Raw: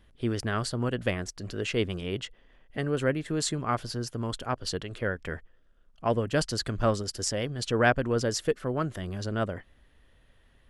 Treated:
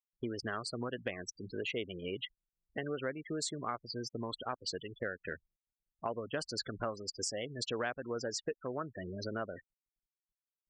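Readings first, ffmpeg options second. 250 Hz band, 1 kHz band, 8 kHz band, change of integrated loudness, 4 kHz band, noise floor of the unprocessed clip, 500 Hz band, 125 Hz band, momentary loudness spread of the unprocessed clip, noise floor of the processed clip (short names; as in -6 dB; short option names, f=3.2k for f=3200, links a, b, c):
-10.5 dB, -9.5 dB, -7.5 dB, -9.5 dB, -6.0 dB, -61 dBFS, -9.5 dB, -15.5 dB, 8 LU, under -85 dBFS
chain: -af "afftfilt=real='re*gte(hypot(re,im),0.0251)':imag='im*gte(hypot(re,im),0.0251)':win_size=1024:overlap=0.75,highpass=f=420:p=1,acompressor=threshold=-37dB:ratio=4,volume=1.5dB"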